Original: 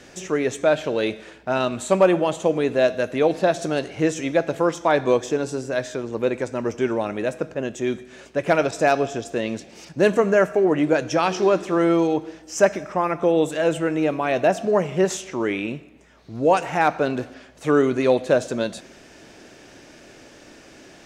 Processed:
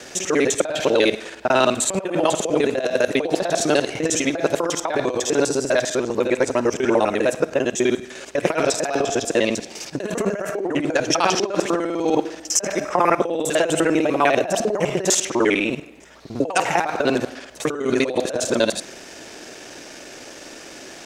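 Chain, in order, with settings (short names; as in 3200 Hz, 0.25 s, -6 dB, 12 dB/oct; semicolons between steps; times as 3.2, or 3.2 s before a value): local time reversal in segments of 50 ms; negative-ratio compressor -22 dBFS, ratio -0.5; tone controls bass -8 dB, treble +5 dB; gain +5 dB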